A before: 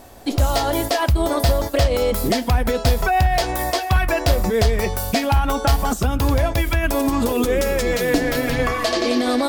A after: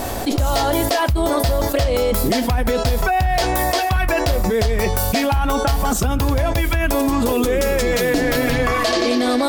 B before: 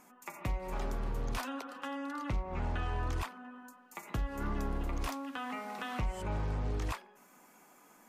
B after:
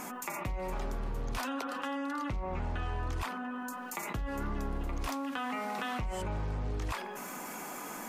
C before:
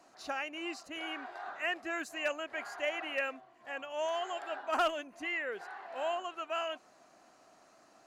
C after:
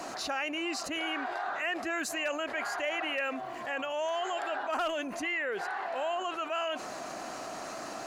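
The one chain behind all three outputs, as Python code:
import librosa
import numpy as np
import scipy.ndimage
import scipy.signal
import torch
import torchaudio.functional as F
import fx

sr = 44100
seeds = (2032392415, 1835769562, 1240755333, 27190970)

y = fx.env_flatten(x, sr, amount_pct=70)
y = y * librosa.db_to_amplitude(-3.0)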